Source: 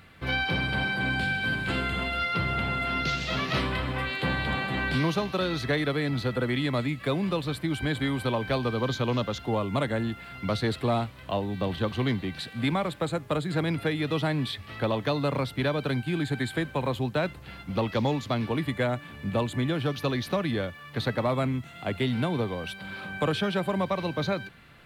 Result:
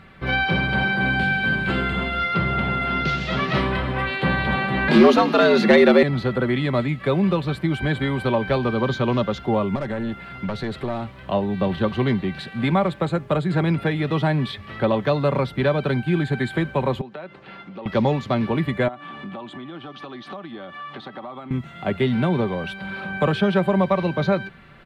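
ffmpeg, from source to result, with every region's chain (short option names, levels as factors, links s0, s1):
-filter_complex "[0:a]asettb=1/sr,asplit=3[s0][s1][s2];[s0]atrim=end=4.884[s3];[s1]atrim=start=4.88:end=6.03,asetpts=PTS-STARTPTS,afade=t=in:d=0.004:c=qsin,afade=t=out:st=1.146:d=0.004:c=qsin,afreqshift=88,bandreject=f=50:t=h:w=6,bandreject=f=100:t=h:w=6,bandreject=f=150:t=h:w=6,bandreject=f=200:t=h:w=6,bandreject=f=250:t=h:w=6,bandreject=f=300:t=h:w=6,bandreject=f=350:t=h:w=6,aeval=exprs='0.224*sin(PI/2*1.58*val(0)/0.224)':c=same[s4];[s2]atrim=start=6.026[s5];[s3][s4]acrossfade=d=0.004:c1=hsin:c2=qsin[s6];[s6][s5]acrossfade=d=0.004:c1=qsin:c2=hsin,asettb=1/sr,asplit=3[s7][s8][s9];[s7]atrim=end=9.754[s10];[s8]atrim=start=9.75:end=11.2,asetpts=PTS-STARTPTS,afade=t=in:d=0.004:c=qsin,afade=t=out:st=1.446:d=0.004:c=qsin,aeval=exprs='clip(val(0),-1,0.0422)':c=same,acompressor=threshold=0.0316:ratio=3:attack=3.2:release=140:knee=1:detection=peak[s11];[s9]atrim=start=11.196[s12];[s10][s11]acrossfade=d=0.004:c1=hsin:c2=qsin[s13];[s13][s12]acrossfade=d=0.004:c1=qsin:c2=hsin,asettb=1/sr,asplit=3[s14][s15][s16];[s14]atrim=end=17.014[s17];[s15]atrim=start=17.01:end=17.86,asetpts=PTS-STARTPTS,afade=t=in:d=0.004:c=qsin,afade=t=out:st=0.846:d=0.004:c=qsin,acompressor=threshold=0.0141:ratio=8:attack=3.2:release=140:knee=1:detection=peak,highpass=250,lowpass=4900[s18];[s16]atrim=start=17.856[s19];[s17][s18]acrossfade=d=0.004:c1=hsin:c2=qsin[s20];[s20][s19]acrossfade=d=0.004:c1=qsin:c2=hsin,asettb=1/sr,asplit=3[s21][s22][s23];[s21]atrim=end=18.884[s24];[s22]atrim=start=18.88:end=21.51,asetpts=PTS-STARTPTS,afade=t=in:d=0.004:c=qsin,afade=t=out:st=2.626:d=0.004:c=qsin,highpass=200,equalizer=f=300:t=q:w=4:g=8,equalizer=f=470:t=q:w=4:g=-5,equalizer=f=770:t=q:w=4:g=9,equalizer=f=1200:t=q:w=4:g=9,equalizer=f=3300:t=q:w=4:g=8,equalizer=f=7000:t=q:w=4:g=-3,lowpass=f=8800:w=0.5412,lowpass=f=8800:w=1.3066,acompressor=threshold=0.0126:ratio=12:attack=3.2:release=140:knee=1:detection=peak[s25];[s23]atrim=start=21.506[s26];[s24][s25]acrossfade=d=0.004:c1=hsin:c2=qsin[s27];[s27][s26]acrossfade=d=0.004:c1=qsin:c2=hsin,lowpass=f=1900:p=1,aecho=1:1:5.2:0.4,volume=2.11"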